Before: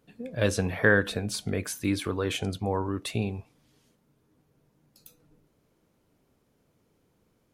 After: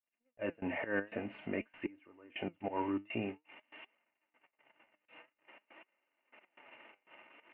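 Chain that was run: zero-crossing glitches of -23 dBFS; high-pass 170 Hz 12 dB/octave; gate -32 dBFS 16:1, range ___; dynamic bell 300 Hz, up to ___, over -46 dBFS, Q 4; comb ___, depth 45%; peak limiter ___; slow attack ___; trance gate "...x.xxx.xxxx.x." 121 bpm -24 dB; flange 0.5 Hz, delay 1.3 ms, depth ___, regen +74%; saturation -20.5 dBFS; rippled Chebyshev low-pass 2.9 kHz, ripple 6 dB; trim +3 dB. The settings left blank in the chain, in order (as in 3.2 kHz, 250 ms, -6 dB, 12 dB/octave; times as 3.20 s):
-46 dB, +3 dB, 3.3 ms, -16 dBFS, 118 ms, 8.9 ms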